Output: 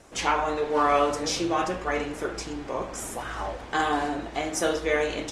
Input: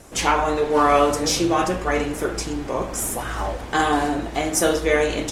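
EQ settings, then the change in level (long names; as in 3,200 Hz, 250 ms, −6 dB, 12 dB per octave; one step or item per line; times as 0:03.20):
high-frequency loss of the air 52 metres
low-shelf EQ 310 Hz −6 dB
−4.0 dB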